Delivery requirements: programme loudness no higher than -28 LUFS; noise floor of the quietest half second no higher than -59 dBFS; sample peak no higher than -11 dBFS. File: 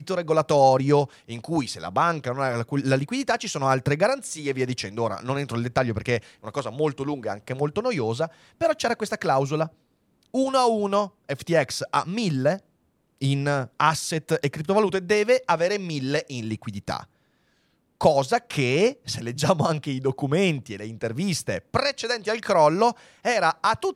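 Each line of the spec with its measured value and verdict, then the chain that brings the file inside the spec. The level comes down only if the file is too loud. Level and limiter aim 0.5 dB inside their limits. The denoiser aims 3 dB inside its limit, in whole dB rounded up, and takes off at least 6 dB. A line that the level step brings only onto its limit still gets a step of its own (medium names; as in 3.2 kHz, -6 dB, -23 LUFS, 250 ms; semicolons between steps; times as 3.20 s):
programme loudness -24.5 LUFS: fail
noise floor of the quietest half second -68 dBFS: pass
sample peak -5.0 dBFS: fail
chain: trim -4 dB; peak limiter -11.5 dBFS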